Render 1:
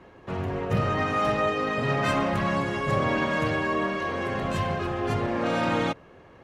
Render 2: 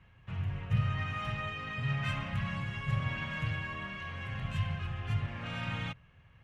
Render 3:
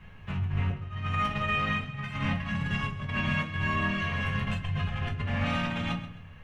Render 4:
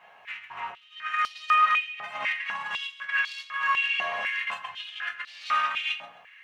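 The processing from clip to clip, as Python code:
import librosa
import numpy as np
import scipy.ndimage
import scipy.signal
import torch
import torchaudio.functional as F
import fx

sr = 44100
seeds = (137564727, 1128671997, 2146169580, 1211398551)

y1 = fx.curve_eq(x, sr, hz=(130.0, 350.0, 2900.0, 4300.0), db=(0, -26, -3, -13))
y1 = F.gain(torch.from_numpy(y1), -1.0).numpy()
y2 = fx.over_compress(y1, sr, threshold_db=-38.0, ratio=-0.5)
y2 = fx.echo_feedback(y2, sr, ms=132, feedback_pct=28, wet_db=-14.0)
y2 = fx.room_shoebox(y2, sr, seeds[0], volume_m3=160.0, walls='furnished', distance_m=1.4)
y2 = F.gain(torch.from_numpy(y2), 4.5).numpy()
y3 = np.clip(10.0 ** (20.0 / 20.0) * y2, -1.0, 1.0) / 10.0 ** (20.0 / 20.0)
y3 = fx.filter_held_highpass(y3, sr, hz=4.0, low_hz=720.0, high_hz=4400.0)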